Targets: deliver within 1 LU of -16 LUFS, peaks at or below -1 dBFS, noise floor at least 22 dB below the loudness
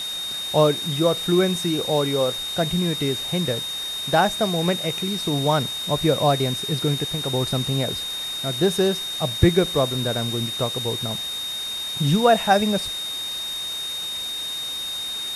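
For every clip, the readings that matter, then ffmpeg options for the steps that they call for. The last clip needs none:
steady tone 3700 Hz; tone level -27 dBFS; noise floor -30 dBFS; noise floor target -44 dBFS; loudness -22.0 LUFS; peak -4.0 dBFS; loudness target -16.0 LUFS
-> -af "bandreject=f=3.7k:w=30"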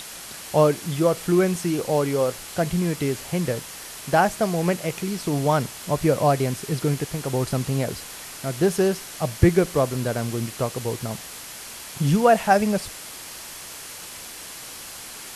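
steady tone none; noise floor -39 dBFS; noise floor target -45 dBFS
-> -af "afftdn=nr=6:nf=-39"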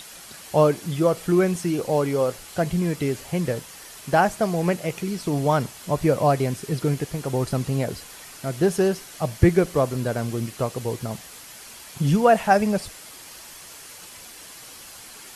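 noise floor -43 dBFS; noise floor target -45 dBFS
-> -af "afftdn=nr=6:nf=-43"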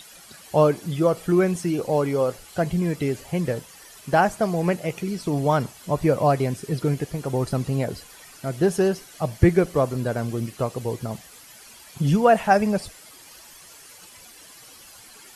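noise floor -47 dBFS; loudness -23.5 LUFS; peak -5.0 dBFS; loudness target -16.0 LUFS
-> -af "volume=7.5dB,alimiter=limit=-1dB:level=0:latency=1"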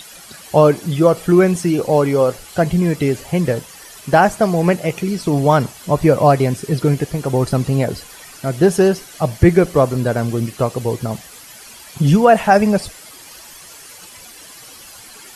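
loudness -16.0 LUFS; peak -1.0 dBFS; noise floor -40 dBFS

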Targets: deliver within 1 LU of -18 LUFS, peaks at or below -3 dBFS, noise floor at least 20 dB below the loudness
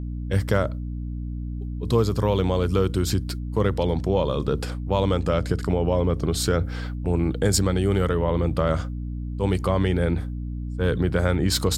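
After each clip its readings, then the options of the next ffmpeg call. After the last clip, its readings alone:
hum 60 Hz; harmonics up to 300 Hz; hum level -28 dBFS; loudness -24.0 LUFS; peak -7.0 dBFS; loudness target -18.0 LUFS
-> -af "bandreject=f=60:t=h:w=4,bandreject=f=120:t=h:w=4,bandreject=f=180:t=h:w=4,bandreject=f=240:t=h:w=4,bandreject=f=300:t=h:w=4"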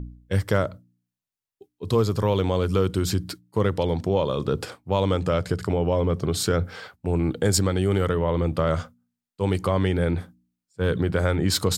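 hum none; loudness -24.5 LUFS; peak -7.5 dBFS; loudness target -18.0 LUFS
-> -af "volume=6.5dB,alimiter=limit=-3dB:level=0:latency=1"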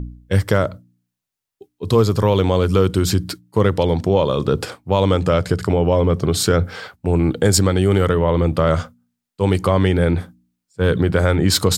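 loudness -18.0 LUFS; peak -3.0 dBFS; noise floor -82 dBFS

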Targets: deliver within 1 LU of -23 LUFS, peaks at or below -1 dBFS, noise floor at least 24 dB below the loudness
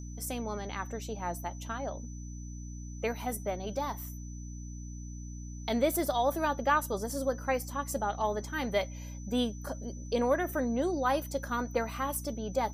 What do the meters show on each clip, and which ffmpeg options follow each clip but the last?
hum 60 Hz; harmonics up to 300 Hz; hum level -40 dBFS; steady tone 6000 Hz; tone level -52 dBFS; loudness -33.0 LUFS; peak -14.0 dBFS; loudness target -23.0 LUFS
-> -af "bandreject=f=60:t=h:w=6,bandreject=f=120:t=h:w=6,bandreject=f=180:t=h:w=6,bandreject=f=240:t=h:w=6,bandreject=f=300:t=h:w=6"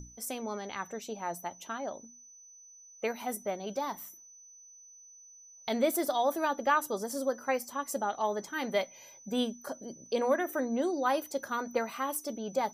hum none; steady tone 6000 Hz; tone level -52 dBFS
-> -af "bandreject=f=6k:w=30"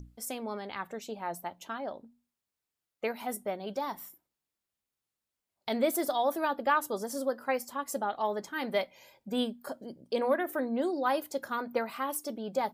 steady tone none; loudness -33.0 LUFS; peak -14.0 dBFS; loudness target -23.0 LUFS
-> -af "volume=10dB"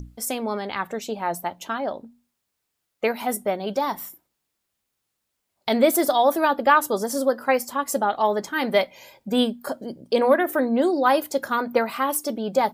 loudness -23.0 LUFS; peak -4.0 dBFS; noise floor -79 dBFS

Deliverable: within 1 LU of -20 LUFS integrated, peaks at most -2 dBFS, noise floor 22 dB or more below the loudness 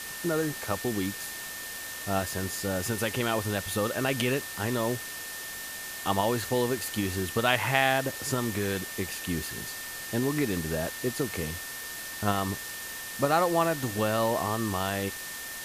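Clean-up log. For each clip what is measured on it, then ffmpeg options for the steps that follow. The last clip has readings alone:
steady tone 1800 Hz; tone level -41 dBFS; noise floor -39 dBFS; noise floor target -52 dBFS; loudness -29.5 LUFS; peak -8.0 dBFS; loudness target -20.0 LUFS
-> -af "bandreject=f=1.8k:w=30"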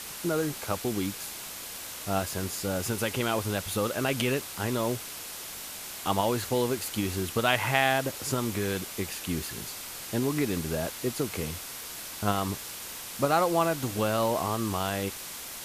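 steady tone none; noise floor -40 dBFS; noise floor target -52 dBFS
-> -af "afftdn=nr=12:nf=-40"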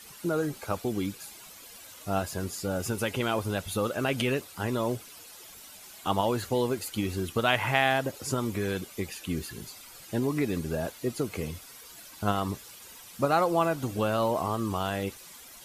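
noise floor -49 dBFS; noise floor target -52 dBFS
-> -af "afftdn=nr=6:nf=-49"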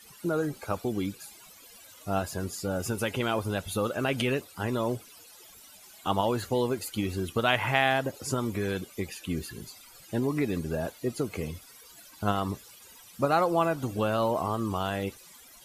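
noise floor -52 dBFS; loudness -30.0 LUFS; peak -8.5 dBFS; loudness target -20.0 LUFS
-> -af "volume=10dB,alimiter=limit=-2dB:level=0:latency=1"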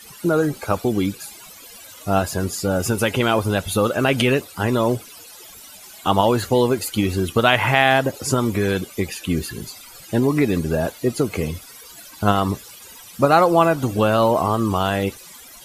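loudness -20.0 LUFS; peak -2.0 dBFS; noise floor -42 dBFS

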